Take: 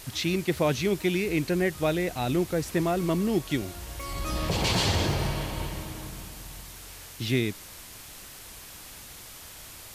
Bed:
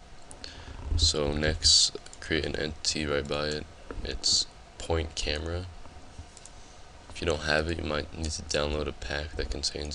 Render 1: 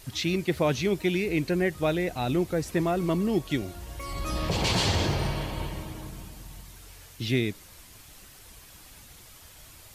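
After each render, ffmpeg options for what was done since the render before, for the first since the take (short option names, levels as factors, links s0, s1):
-af "afftdn=nr=7:nf=-45"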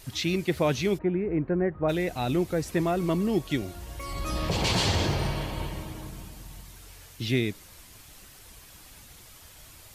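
-filter_complex "[0:a]asplit=3[s0][s1][s2];[s0]afade=t=out:st=0.97:d=0.02[s3];[s1]lowpass=f=1500:w=0.5412,lowpass=f=1500:w=1.3066,afade=t=in:st=0.97:d=0.02,afade=t=out:st=1.88:d=0.02[s4];[s2]afade=t=in:st=1.88:d=0.02[s5];[s3][s4][s5]amix=inputs=3:normalize=0"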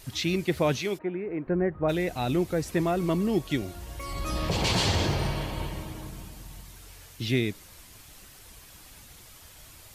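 -filter_complex "[0:a]asettb=1/sr,asplit=3[s0][s1][s2];[s0]atrim=end=0.774[s3];[s1]atrim=start=0.77:end=1.47,asetpts=PTS-STARTPTS,afade=t=in:d=0.004:c=qsin,afade=t=out:st=0.696:d=0.004:c=qsin,highpass=f=450:p=1[s4];[s2]atrim=start=1.466[s5];[s3][s4]acrossfade=d=0.004:c1=hsin:c2=qsin[s6];[s6][s5]acrossfade=d=0.004:c1=qsin:c2=hsin"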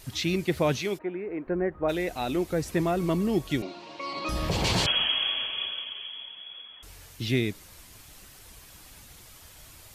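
-filter_complex "[0:a]asettb=1/sr,asplit=3[s0][s1][s2];[s0]atrim=end=0.984[s3];[s1]atrim=start=0.98:end=2.51,asetpts=PTS-STARTPTS,afade=t=in:d=0.004:c=qsin,afade=t=out:st=1.526:d=0.004:c=qsin,equalizer=f=130:w=1.5:g=-11[s4];[s2]atrim=start=2.506[s5];[s3][s4]acrossfade=d=0.004:c1=hsin:c2=qsin[s6];[s6][s5]acrossfade=d=0.004:c1=qsin:c2=hsin,asettb=1/sr,asplit=3[s7][s8][s9];[s7]atrim=end=3.624[s10];[s8]atrim=start=3.62:end=4.29,asetpts=PTS-STARTPTS,afade=t=in:d=0.004:c=qsin,afade=t=out:st=0.666:d=0.004:c=qsin,highpass=f=200:w=0.5412,highpass=f=200:w=1.3066,equalizer=f=310:t=q:w=4:g=5,equalizer=f=590:t=q:w=4:g=4,equalizer=f=980:t=q:w=4:g=9,equalizer=f=1700:t=q:w=4:g=-4,equalizer=f=2500:t=q:w=4:g=8,equalizer=f=4200:t=q:w=4:g=8,lowpass=f=5200:w=0.5412,lowpass=f=5200:w=1.3066[s11];[s9]atrim=start=4.286[s12];[s10][s11]acrossfade=d=0.004:c1=hsin:c2=qsin[s13];[s13][s12]acrossfade=d=0.004:c1=qsin:c2=hsin,asettb=1/sr,asplit=3[s14][s15][s16];[s14]atrim=end=4.864[s17];[s15]atrim=start=4.86:end=6.83,asetpts=PTS-STARTPTS,afade=t=in:d=0.004:c=qsin,afade=t=out:st=1.966:d=0.004:c=qsin,lowpass=f=2900:t=q:w=0.5098,lowpass=f=2900:t=q:w=0.6013,lowpass=f=2900:t=q:w=0.9,lowpass=f=2900:t=q:w=2.563,afreqshift=-3400[s18];[s16]atrim=start=6.826[s19];[s17][s18]acrossfade=d=0.004:c1=hsin:c2=qsin[s20];[s20][s19]acrossfade=d=0.004:c1=qsin:c2=hsin"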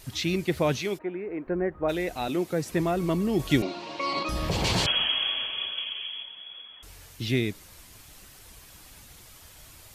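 -filter_complex "[0:a]asettb=1/sr,asplit=3[s0][s1][s2];[s0]atrim=end=2.284[s3];[s1]atrim=start=2.28:end=2.71,asetpts=PTS-STARTPTS,afade=t=in:d=0.004:c=qsin,afade=t=out:st=0.426:d=0.004:c=qsin,highpass=f=110:w=0.5412,highpass=f=110:w=1.3066[s4];[s2]atrim=start=2.706[s5];[s3][s4]acrossfade=d=0.004:c1=hsin:c2=qsin[s6];[s6][s5]acrossfade=d=0.004:c1=qsin:c2=hsin,asettb=1/sr,asplit=3[s7][s8][s9];[s7]atrim=end=3.394[s10];[s8]atrim=start=3.39:end=4.23,asetpts=PTS-STARTPTS,afade=t=in:d=0.004:c=qsin,afade=t=out:st=0.836:d=0.004:c=qsin,acontrast=48[s11];[s9]atrim=start=4.226[s12];[s10][s11]acrossfade=d=0.004:c1=hsin:c2=qsin[s13];[s13][s12]acrossfade=d=0.004:c1=qsin:c2=hsin,asettb=1/sr,asplit=3[s14][s15][s16];[s14]atrim=end=5.774[s17];[s15]atrim=start=5.77:end=6.23,asetpts=PTS-STARTPTS,afade=t=in:d=0.004:c=qsin,afade=t=out:st=0.456:d=0.004:c=qsin,equalizer=f=2600:t=o:w=0.77:g=5.5[s18];[s16]atrim=start=6.226[s19];[s17][s18]acrossfade=d=0.004:c1=hsin:c2=qsin[s20];[s20][s19]acrossfade=d=0.004:c1=qsin:c2=hsin"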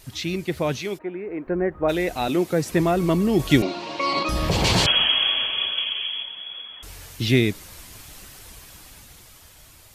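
-af "dynaudnorm=f=290:g=11:m=2.51"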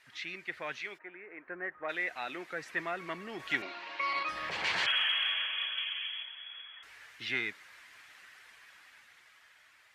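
-af "asoftclip=type=tanh:threshold=0.316,bandpass=f=1800:t=q:w=2.6:csg=0"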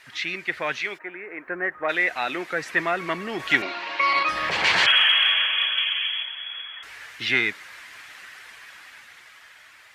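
-af "volume=3.98"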